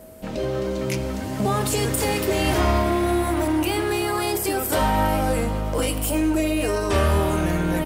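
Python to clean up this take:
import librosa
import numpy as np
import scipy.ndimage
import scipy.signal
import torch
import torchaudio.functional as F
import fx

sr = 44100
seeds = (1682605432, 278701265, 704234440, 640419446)

y = fx.notch(x, sr, hz=640.0, q=30.0)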